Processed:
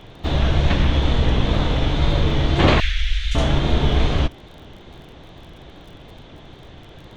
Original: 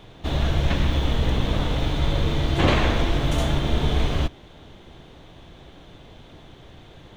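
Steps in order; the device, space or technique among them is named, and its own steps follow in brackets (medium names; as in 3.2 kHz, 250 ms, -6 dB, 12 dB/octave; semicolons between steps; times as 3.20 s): lo-fi chain (low-pass 6.1 kHz 12 dB/octave; wow and flutter; crackle 29 per s -42 dBFS); 2.80–3.35 s: inverse Chebyshev band-stop 110–980 Hz, stop band 40 dB; trim +4 dB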